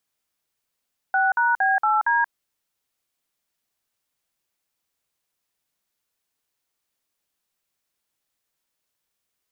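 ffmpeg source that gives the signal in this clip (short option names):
-f lavfi -i "aevalsrc='0.106*clip(min(mod(t,0.231),0.18-mod(t,0.231))/0.002,0,1)*(eq(floor(t/0.231),0)*(sin(2*PI*770*mod(t,0.231))+sin(2*PI*1477*mod(t,0.231)))+eq(floor(t/0.231),1)*(sin(2*PI*941*mod(t,0.231))+sin(2*PI*1477*mod(t,0.231)))+eq(floor(t/0.231),2)*(sin(2*PI*770*mod(t,0.231))+sin(2*PI*1633*mod(t,0.231)))+eq(floor(t/0.231),3)*(sin(2*PI*852*mod(t,0.231))+sin(2*PI*1336*mod(t,0.231)))+eq(floor(t/0.231),4)*(sin(2*PI*941*mod(t,0.231))+sin(2*PI*1633*mod(t,0.231))))':d=1.155:s=44100"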